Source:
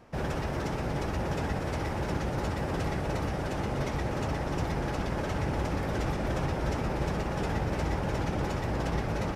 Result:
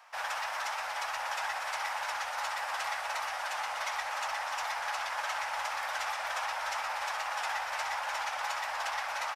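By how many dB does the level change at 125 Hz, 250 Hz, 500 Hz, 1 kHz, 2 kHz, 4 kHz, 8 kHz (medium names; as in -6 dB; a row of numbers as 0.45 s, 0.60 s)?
under -40 dB, under -35 dB, -11.5 dB, +3.0 dB, +5.0 dB, +5.0 dB, +5.0 dB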